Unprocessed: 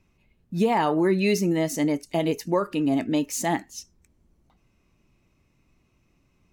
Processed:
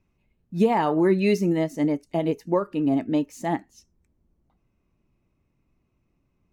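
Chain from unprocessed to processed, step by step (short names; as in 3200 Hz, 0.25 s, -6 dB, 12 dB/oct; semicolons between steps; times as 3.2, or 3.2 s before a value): high shelf 2100 Hz -6.5 dB, from 1.64 s -11.5 dB; upward expander 1.5:1, over -33 dBFS; gain +3 dB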